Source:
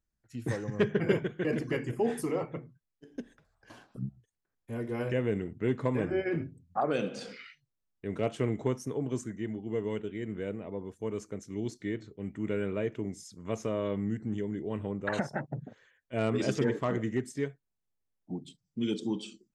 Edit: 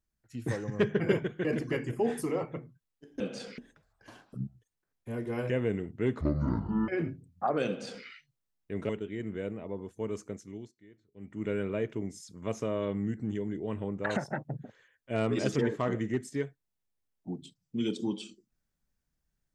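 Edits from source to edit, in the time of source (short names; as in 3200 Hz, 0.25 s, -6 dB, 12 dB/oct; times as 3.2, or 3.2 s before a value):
5.83–6.22 speed 58%
7.01–7.39 copy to 3.2
8.23–9.92 cut
11.33–12.53 dip -22 dB, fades 0.42 s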